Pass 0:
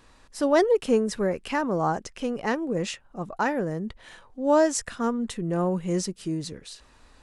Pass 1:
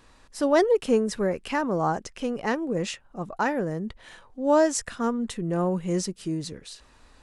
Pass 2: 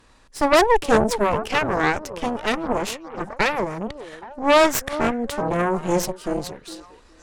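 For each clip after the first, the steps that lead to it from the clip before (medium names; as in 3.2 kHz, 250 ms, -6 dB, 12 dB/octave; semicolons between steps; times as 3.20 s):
no audible change
repeats whose band climbs or falls 412 ms, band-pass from 450 Hz, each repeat 0.7 oct, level -9.5 dB; Chebyshev shaper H 6 -7 dB, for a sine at -9 dBFS; trim +1.5 dB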